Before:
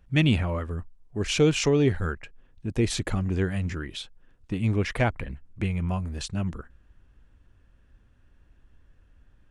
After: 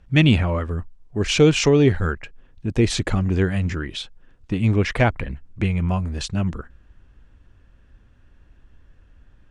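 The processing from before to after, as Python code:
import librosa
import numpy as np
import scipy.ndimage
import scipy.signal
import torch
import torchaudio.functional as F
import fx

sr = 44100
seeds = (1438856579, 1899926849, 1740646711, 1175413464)

y = scipy.signal.sosfilt(scipy.signal.butter(2, 7800.0, 'lowpass', fs=sr, output='sos'), x)
y = y * librosa.db_to_amplitude(6.0)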